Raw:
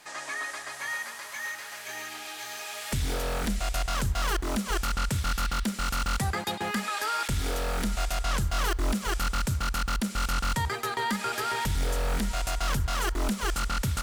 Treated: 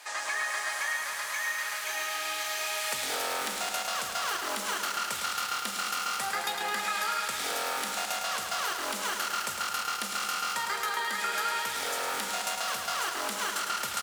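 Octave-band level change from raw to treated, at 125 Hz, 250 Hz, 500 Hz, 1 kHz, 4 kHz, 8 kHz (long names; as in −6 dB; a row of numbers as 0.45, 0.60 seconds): −26.0, −14.0, −2.5, +1.0, +2.5, +3.0 decibels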